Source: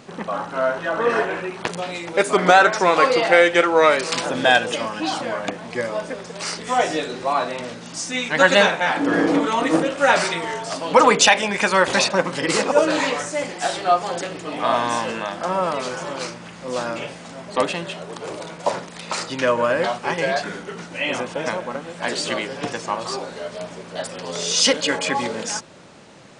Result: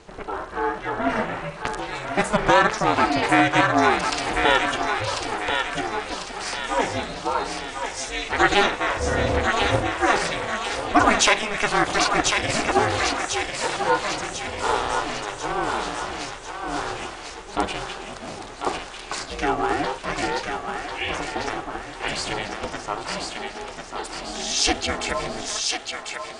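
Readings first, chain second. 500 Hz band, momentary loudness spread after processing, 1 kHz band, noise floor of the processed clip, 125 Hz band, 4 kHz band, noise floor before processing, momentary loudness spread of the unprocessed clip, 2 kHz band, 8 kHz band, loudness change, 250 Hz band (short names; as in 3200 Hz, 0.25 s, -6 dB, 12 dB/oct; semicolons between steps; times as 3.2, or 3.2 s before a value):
-6.0 dB, 13 LU, -1.5 dB, -38 dBFS, +1.5 dB, -2.0 dB, -39 dBFS, 15 LU, -2.5 dB, -2.0 dB, -3.0 dB, -2.5 dB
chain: ring modulator 210 Hz; thinning echo 1.045 s, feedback 54%, high-pass 850 Hz, level -3.5 dB; gain -1 dB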